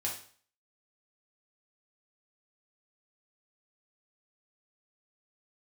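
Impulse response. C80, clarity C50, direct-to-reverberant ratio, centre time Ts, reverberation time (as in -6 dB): 11.0 dB, 6.0 dB, -3.5 dB, 29 ms, 0.45 s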